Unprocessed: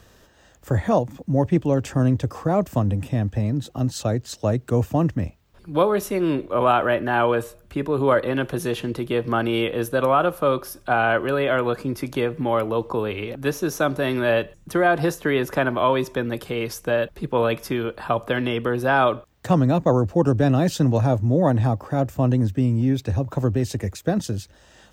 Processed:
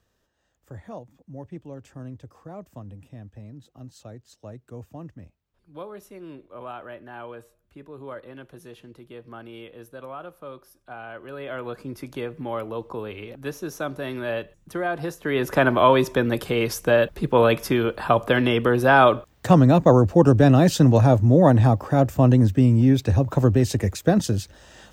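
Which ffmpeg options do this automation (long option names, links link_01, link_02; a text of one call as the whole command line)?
ffmpeg -i in.wav -af "volume=3.5dB,afade=type=in:start_time=11.14:duration=0.8:silence=0.281838,afade=type=in:start_time=15.19:duration=0.47:silence=0.266073" out.wav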